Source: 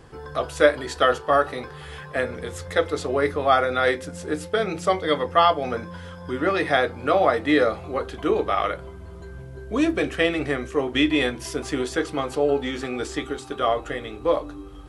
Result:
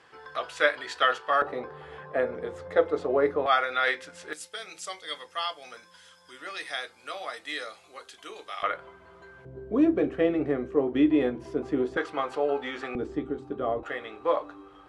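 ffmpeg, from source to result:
-af "asetnsamples=n=441:p=0,asendcmd='1.42 bandpass f 580;3.46 bandpass f 2300;4.33 bandpass f 7500;8.63 bandpass f 1500;9.45 bandpass f 330;11.97 bandpass f 1200;12.95 bandpass f 230;13.83 bandpass f 1200',bandpass=f=2200:t=q:w=0.75:csg=0"

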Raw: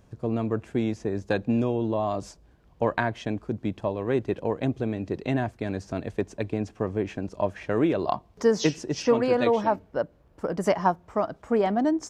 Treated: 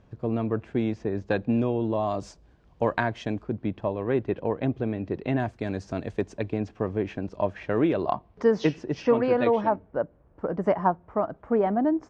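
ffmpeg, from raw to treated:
-af "asetnsamples=n=441:p=0,asendcmd='1.95 lowpass f 6800;3.43 lowpass f 3000;5.4 lowpass f 6800;6.38 lowpass f 4300;8.02 lowpass f 2700;9.69 lowpass f 1600',lowpass=3700"

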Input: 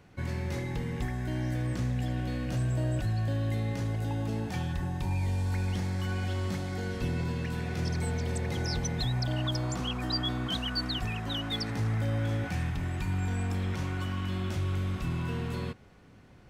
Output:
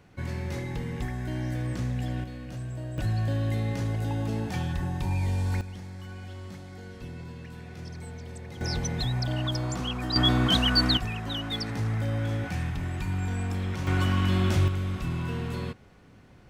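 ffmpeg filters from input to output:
-af "asetnsamples=n=441:p=0,asendcmd='2.24 volume volume -6.5dB;2.98 volume volume 2.5dB;5.61 volume volume -9dB;8.61 volume volume 1.5dB;10.16 volume volume 9.5dB;10.97 volume volume 1dB;13.87 volume volume 8.5dB;14.68 volume volume 1.5dB',volume=1.06"

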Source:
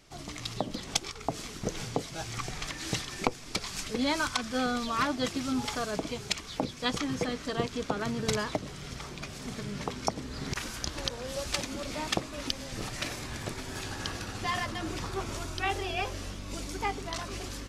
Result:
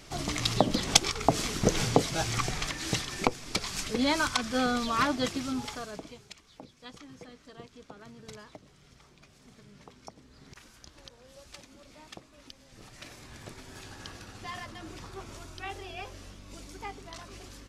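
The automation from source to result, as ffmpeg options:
-af "volume=7.08,afade=t=out:st=2.06:d=0.72:silence=0.473151,afade=t=out:st=5.1:d=0.64:silence=0.421697,afade=t=out:st=5.74:d=0.56:silence=0.266073,afade=t=in:st=12.65:d=0.84:silence=0.375837"

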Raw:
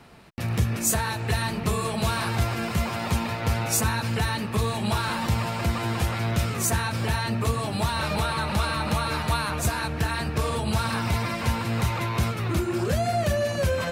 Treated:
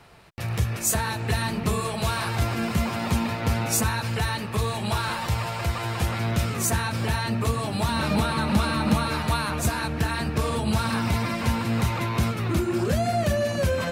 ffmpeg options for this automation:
-af "asetnsamples=n=441:p=0,asendcmd='0.95 equalizer g 2.5;1.8 equalizer g -4.5;2.42 equalizer g 4.5;3.83 equalizer g -4;5.14 equalizer g -10;6 equalizer g 1.5;7.89 equalizer g 11.5;9.06 equalizer g 4.5',equalizer=f=240:t=o:w=0.83:g=-8.5"

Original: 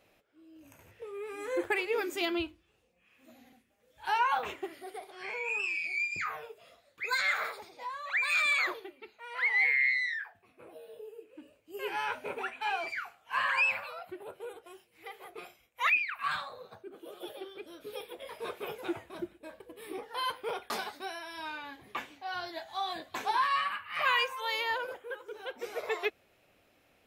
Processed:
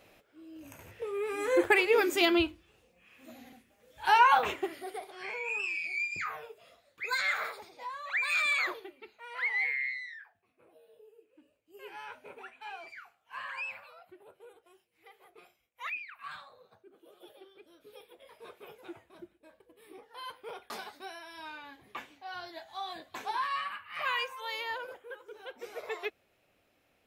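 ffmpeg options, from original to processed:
-af "volume=4.47,afade=t=out:st=4.3:d=1.09:silence=0.421697,afade=t=out:st=9.24:d=0.82:silence=0.316228,afade=t=in:st=20.12:d=0.93:silence=0.473151"

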